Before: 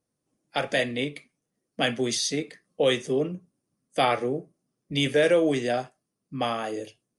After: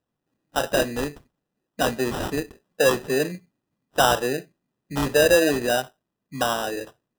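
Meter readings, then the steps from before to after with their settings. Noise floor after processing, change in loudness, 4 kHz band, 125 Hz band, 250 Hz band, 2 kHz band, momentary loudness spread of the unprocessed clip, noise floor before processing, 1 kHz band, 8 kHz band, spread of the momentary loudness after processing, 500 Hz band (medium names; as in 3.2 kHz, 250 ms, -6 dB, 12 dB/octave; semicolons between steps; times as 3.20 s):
-82 dBFS, +3.0 dB, +1.0 dB, +1.5 dB, +1.5 dB, +4.5 dB, 13 LU, -82 dBFS, +4.0 dB, +4.5 dB, 14 LU, +3.0 dB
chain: dynamic bell 660 Hz, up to +5 dB, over -36 dBFS, Q 0.99; sample-and-hold 20×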